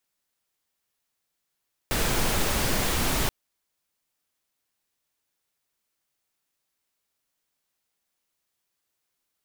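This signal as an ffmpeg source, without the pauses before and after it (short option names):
-f lavfi -i "anoisesrc=c=pink:a=0.305:d=1.38:r=44100:seed=1"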